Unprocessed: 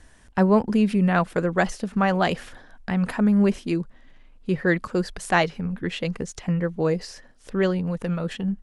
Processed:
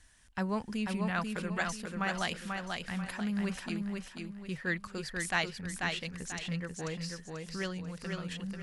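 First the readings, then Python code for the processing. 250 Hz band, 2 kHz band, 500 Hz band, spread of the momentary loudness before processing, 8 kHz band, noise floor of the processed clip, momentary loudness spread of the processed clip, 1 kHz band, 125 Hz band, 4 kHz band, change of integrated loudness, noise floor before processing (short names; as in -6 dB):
-13.5 dB, -6.5 dB, -16.0 dB, 10 LU, -2.0 dB, -54 dBFS, 8 LU, -11.5 dB, -12.5 dB, -3.5 dB, -12.0 dB, -52 dBFS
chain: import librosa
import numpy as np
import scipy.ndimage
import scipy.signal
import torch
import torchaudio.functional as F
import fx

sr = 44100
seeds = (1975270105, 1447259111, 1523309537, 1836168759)

y = fx.tone_stack(x, sr, knobs='5-5-5')
y = fx.echo_feedback(y, sr, ms=489, feedback_pct=35, wet_db=-4.0)
y = y * 10.0 ** (2.5 / 20.0)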